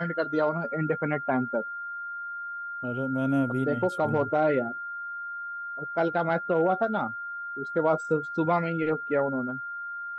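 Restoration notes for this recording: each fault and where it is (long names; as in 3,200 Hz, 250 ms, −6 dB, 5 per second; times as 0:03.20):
whistle 1,400 Hz −33 dBFS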